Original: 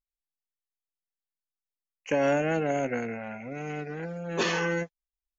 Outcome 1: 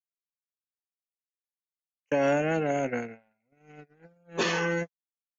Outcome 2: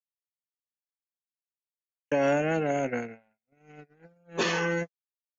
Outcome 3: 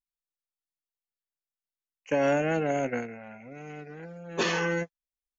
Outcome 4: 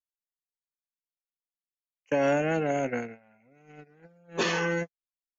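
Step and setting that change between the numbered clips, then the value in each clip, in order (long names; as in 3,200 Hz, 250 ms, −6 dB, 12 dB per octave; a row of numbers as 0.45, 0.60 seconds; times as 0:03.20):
noise gate, range: −39, −59, −7, −23 decibels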